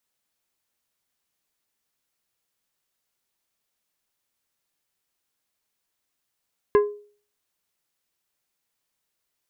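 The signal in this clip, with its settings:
struck glass plate, lowest mode 414 Hz, decay 0.44 s, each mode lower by 8 dB, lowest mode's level −11 dB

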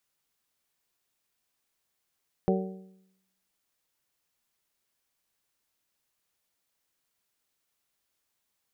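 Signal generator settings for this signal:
struck metal bell, lowest mode 189 Hz, modes 5, decay 0.83 s, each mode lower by 2 dB, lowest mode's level −22.5 dB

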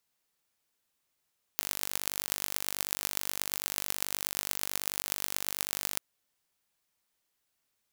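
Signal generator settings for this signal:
impulse train 49.3 per second, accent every 6, −1.5 dBFS 4.40 s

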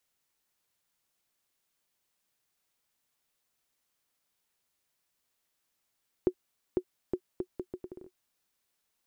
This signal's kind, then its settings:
bouncing ball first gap 0.50 s, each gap 0.73, 365 Hz, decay 69 ms −14 dBFS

